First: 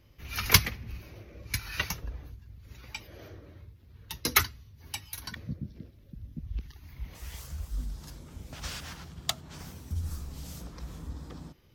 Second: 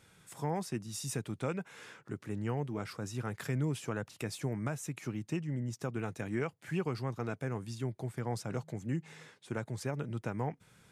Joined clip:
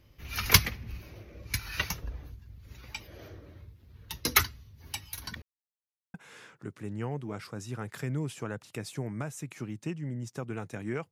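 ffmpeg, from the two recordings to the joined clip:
-filter_complex "[0:a]apad=whole_dur=11.11,atrim=end=11.11,asplit=2[a][b];[a]atrim=end=5.42,asetpts=PTS-STARTPTS,afade=t=out:st=5.416:d=0.004:c=hsin[c];[b]atrim=start=5.42:end=6.14,asetpts=PTS-STARTPTS,volume=0[d];[1:a]atrim=start=1.6:end=6.57,asetpts=PTS-STARTPTS,afade=t=in:d=0.004:c=hsin[e];[c][d][e]concat=n=3:v=0:a=1"

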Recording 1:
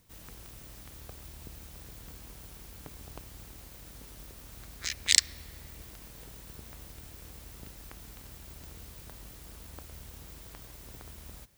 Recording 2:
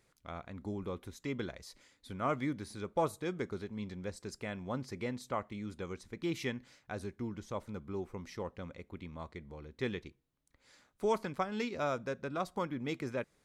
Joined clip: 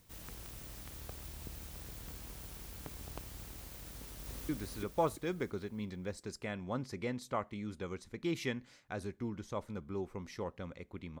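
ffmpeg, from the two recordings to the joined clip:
-filter_complex "[0:a]apad=whole_dur=11.2,atrim=end=11.2,atrim=end=4.492[a];[1:a]atrim=start=2.478:end=9.19[b];[a][b]acrossfade=d=0.004:c1=hsin:c2=hsin,asplit=2[c][d];[d]afade=t=in:st=3.91:d=0.01,afade=t=out:st=4.49:d=0.01,aecho=0:1:340|680|1020|1360|1700|2040:0.944061|0.424827|0.191172|0.0860275|0.0387124|0.0174206[e];[c][e]amix=inputs=2:normalize=0"

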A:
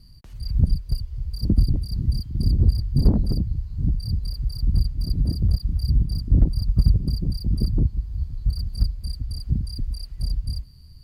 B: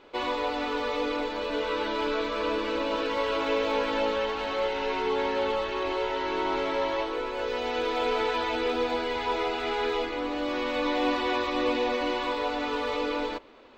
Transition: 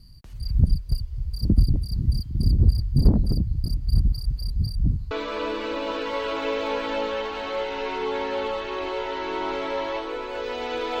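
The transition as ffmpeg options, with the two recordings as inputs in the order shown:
-filter_complex "[0:a]apad=whole_dur=11,atrim=end=11,asplit=2[a][b];[a]atrim=end=3.642[c];[b]atrim=start=3.638:end=5.112,asetpts=PTS-STARTPTS,areverse[d];[1:a]atrim=start=2.148:end=8.04[e];[c][d]acrossfade=d=0.004:c1=hsin:c2=hsin[f];[f][e]acrossfade=d=0.004:c1=hsin:c2=hsin"

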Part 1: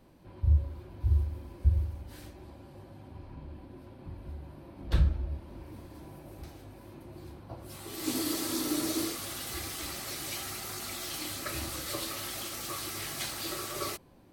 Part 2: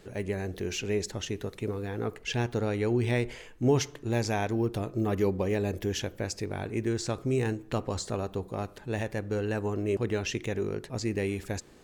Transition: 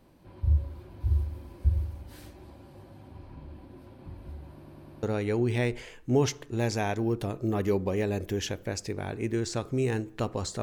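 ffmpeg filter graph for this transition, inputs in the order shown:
-filter_complex "[0:a]apad=whole_dur=10.62,atrim=end=10.62,asplit=5[a][b][c][d][e];[a]atrim=end=4.632[f];[b]atrim=start=4.528:end=4.632[g];[c]atrim=start=4.528:end=4.632[h];[d]atrim=start=4.528:end=4.632[i];[e]atrim=start=4.528:end=4.632[j];[1:a]atrim=start=2.558:end=8.15[k];[f][g]acrossfade=d=0.004:c1=hsin:c2=hsin[l];[l][h]acrossfade=d=0.004:c1=hsin:c2=hsin[m];[m][i]acrossfade=d=0.004:c1=hsin:c2=hsin[n];[n][j]acrossfade=d=0.004:c1=hsin:c2=hsin[o];[o][k]acrossfade=d=0.004:c1=hsin:c2=hsin"

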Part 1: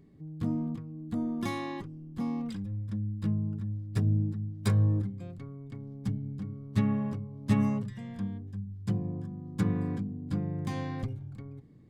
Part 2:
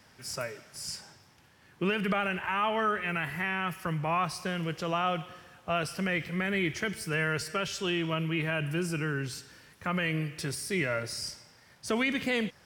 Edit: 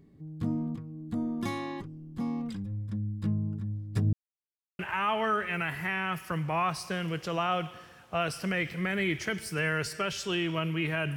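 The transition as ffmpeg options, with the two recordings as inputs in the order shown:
-filter_complex "[0:a]apad=whole_dur=11.16,atrim=end=11.16,asplit=2[a][b];[a]atrim=end=4.13,asetpts=PTS-STARTPTS,afade=t=out:st=4.126:d=0.004:c=hsin[c];[b]atrim=start=4.13:end=4.79,asetpts=PTS-STARTPTS,volume=0[d];[1:a]atrim=start=2.34:end=8.71,asetpts=PTS-STARTPTS,afade=t=in:d=0.004:c=hsin[e];[c][d][e]concat=n=3:v=0:a=1"

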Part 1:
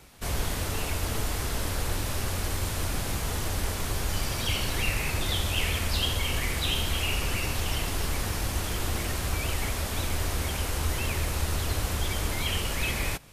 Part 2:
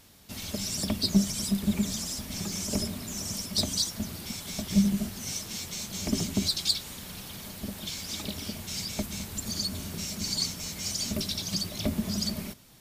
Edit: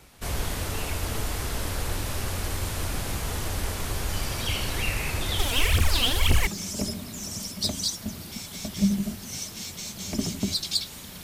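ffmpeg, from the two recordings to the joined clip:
-filter_complex "[0:a]asplit=3[a][b][c];[a]afade=t=out:st=5.38:d=0.02[d];[b]aphaser=in_gain=1:out_gain=1:delay=4.5:decay=0.77:speed=1.9:type=triangular,afade=t=in:st=5.38:d=0.02,afade=t=out:st=6.47:d=0.02[e];[c]afade=t=in:st=6.47:d=0.02[f];[d][e][f]amix=inputs=3:normalize=0,apad=whole_dur=11.23,atrim=end=11.23,atrim=end=6.472[g];[1:a]atrim=start=2.408:end=7.17[h];[g][h]acrossfade=d=0.004:c1=hsin:c2=hsin"

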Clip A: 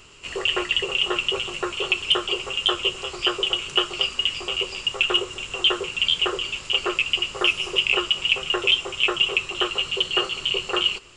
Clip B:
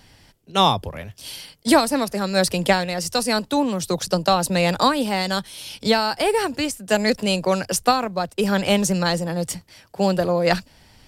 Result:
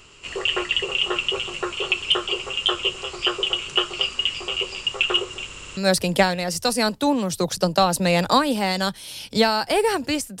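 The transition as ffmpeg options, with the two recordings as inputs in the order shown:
-filter_complex "[0:a]apad=whole_dur=10.4,atrim=end=10.4,asplit=5[a][b][c][d][e];[a]atrim=end=5.532[f];[b]atrim=start=5.468:end=5.532[g];[c]atrim=start=5.468:end=5.532[h];[d]atrim=start=5.468:end=5.532[i];[e]atrim=start=5.468:end=5.532[j];[1:a]atrim=start=2.268:end=6.9[k];[f][g]acrossfade=d=0.004:c1=hsin:c2=hsin[l];[l][h]acrossfade=d=0.004:c1=hsin:c2=hsin[m];[m][i]acrossfade=d=0.004:c1=hsin:c2=hsin[n];[n][j]acrossfade=d=0.004:c1=hsin:c2=hsin[o];[o][k]acrossfade=d=0.004:c1=hsin:c2=hsin"

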